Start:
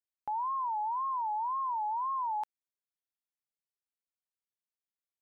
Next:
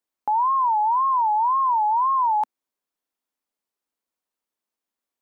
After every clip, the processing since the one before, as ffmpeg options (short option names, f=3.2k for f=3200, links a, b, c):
-af "equalizer=f=125:t=o:w=1:g=-11,equalizer=f=250:t=o:w=1:g=10,equalizer=f=500:t=o:w=1:g=4,equalizer=f=1k:t=o:w=1:g=6,volume=6dB"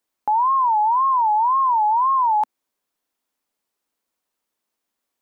-af "alimiter=limit=-21.5dB:level=0:latency=1:release=67,volume=7dB"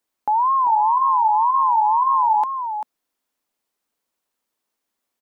-af "aecho=1:1:392:0.398"